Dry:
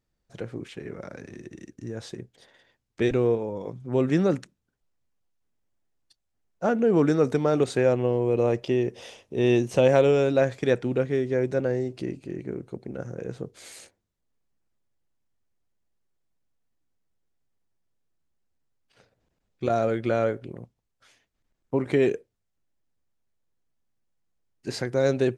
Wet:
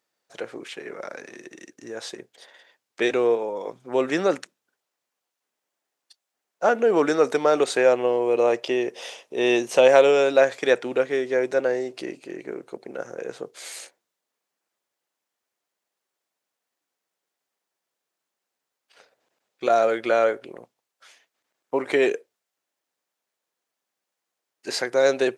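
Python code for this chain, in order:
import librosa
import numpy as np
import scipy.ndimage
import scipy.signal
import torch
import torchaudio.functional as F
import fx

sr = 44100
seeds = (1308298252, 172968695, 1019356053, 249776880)

y = scipy.signal.sosfilt(scipy.signal.butter(2, 530.0, 'highpass', fs=sr, output='sos'), x)
y = y * 10.0 ** (7.5 / 20.0)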